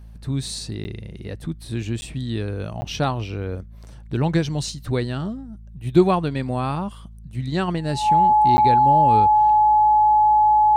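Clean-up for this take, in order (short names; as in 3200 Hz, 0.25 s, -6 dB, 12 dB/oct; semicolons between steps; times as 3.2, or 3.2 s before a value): de-hum 54.7 Hz, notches 4; notch 850 Hz, Q 30; interpolate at 0.84/2.01/2.81/8.57, 10 ms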